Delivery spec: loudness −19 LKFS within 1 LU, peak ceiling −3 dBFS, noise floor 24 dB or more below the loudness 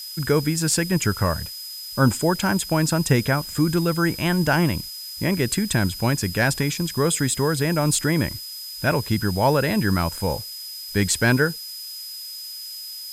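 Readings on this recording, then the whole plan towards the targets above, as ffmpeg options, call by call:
interfering tone 5,000 Hz; level of the tone −34 dBFS; background noise floor −35 dBFS; target noise floor −47 dBFS; integrated loudness −22.5 LKFS; sample peak −4.5 dBFS; target loudness −19.0 LKFS
→ -af "bandreject=frequency=5000:width=30"
-af "afftdn=noise_reduction=12:noise_floor=-35"
-af "volume=3.5dB,alimiter=limit=-3dB:level=0:latency=1"

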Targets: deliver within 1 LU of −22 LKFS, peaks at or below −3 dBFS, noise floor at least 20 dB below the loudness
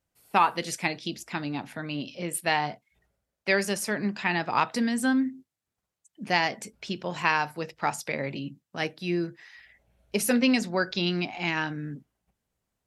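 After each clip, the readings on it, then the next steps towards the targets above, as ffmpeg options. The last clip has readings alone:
integrated loudness −28.0 LKFS; sample peak −7.0 dBFS; target loudness −22.0 LKFS
→ -af "volume=6dB,alimiter=limit=-3dB:level=0:latency=1"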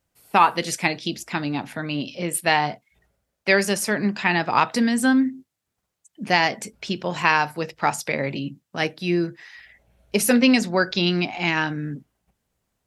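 integrated loudness −22.0 LKFS; sample peak −3.0 dBFS; background noise floor −80 dBFS

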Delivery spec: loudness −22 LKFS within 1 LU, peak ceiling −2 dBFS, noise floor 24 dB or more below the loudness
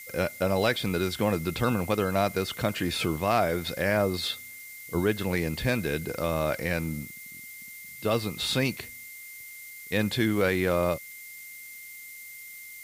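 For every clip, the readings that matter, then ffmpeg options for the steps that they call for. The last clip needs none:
interfering tone 2,100 Hz; level of the tone −44 dBFS; background noise floor −44 dBFS; target noise floor −52 dBFS; integrated loudness −27.5 LKFS; sample peak −12.0 dBFS; target loudness −22.0 LKFS
→ -af "bandreject=frequency=2100:width=30"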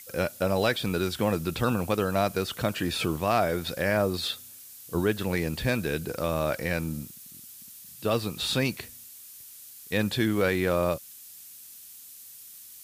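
interfering tone none found; background noise floor −47 dBFS; target noise floor −52 dBFS
→ -af "afftdn=noise_reduction=6:noise_floor=-47"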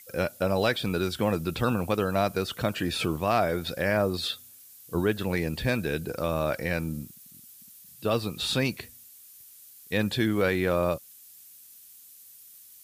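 background noise floor −51 dBFS; target noise floor −52 dBFS
→ -af "afftdn=noise_reduction=6:noise_floor=-51"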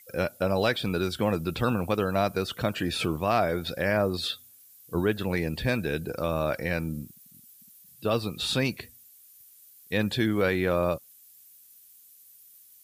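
background noise floor −55 dBFS; integrated loudness −28.0 LKFS; sample peak −12.5 dBFS; target loudness −22.0 LKFS
→ -af "volume=6dB"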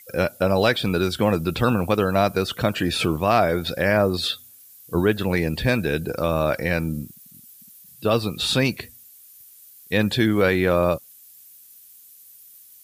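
integrated loudness −22.0 LKFS; sample peak −6.5 dBFS; background noise floor −49 dBFS

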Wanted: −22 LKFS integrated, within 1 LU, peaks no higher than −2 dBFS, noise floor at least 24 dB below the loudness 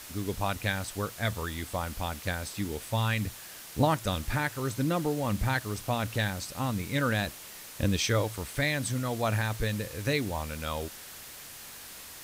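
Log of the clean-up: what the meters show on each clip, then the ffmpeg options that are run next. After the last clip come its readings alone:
background noise floor −46 dBFS; target noise floor −55 dBFS; integrated loudness −31.0 LKFS; sample peak −12.5 dBFS; target loudness −22.0 LKFS
→ -af "afftdn=noise_reduction=9:noise_floor=-46"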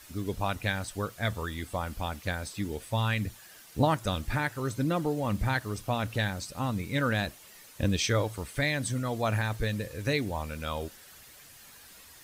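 background noise floor −52 dBFS; target noise floor −55 dBFS
→ -af "afftdn=noise_reduction=6:noise_floor=-52"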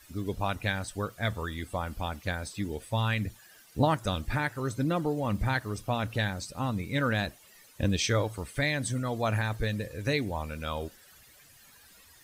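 background noise floor −57 dBFS; integrated loudness −31.0 LKFS; sample peak −12.5 dBFS; target loudness −22.0 LKFS
→ -af "volume=9dB"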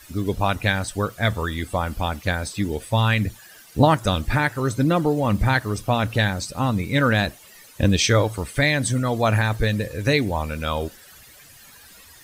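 integrated loudness −22.0 LKFS; sample peak −3.5 dBFS; background noise floor −48 dBFS

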